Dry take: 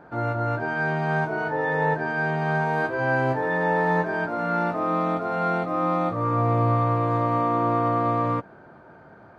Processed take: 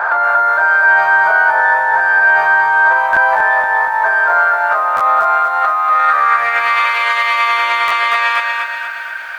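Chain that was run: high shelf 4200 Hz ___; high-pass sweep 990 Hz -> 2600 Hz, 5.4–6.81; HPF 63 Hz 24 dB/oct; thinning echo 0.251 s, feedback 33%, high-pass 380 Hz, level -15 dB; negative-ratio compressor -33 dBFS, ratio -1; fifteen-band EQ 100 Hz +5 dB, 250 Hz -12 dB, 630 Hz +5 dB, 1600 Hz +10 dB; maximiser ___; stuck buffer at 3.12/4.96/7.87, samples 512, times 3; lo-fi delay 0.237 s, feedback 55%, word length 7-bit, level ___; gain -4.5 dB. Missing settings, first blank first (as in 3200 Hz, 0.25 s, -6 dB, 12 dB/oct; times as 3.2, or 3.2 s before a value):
+2.5 dB, +21.5 dB, -5.5 dB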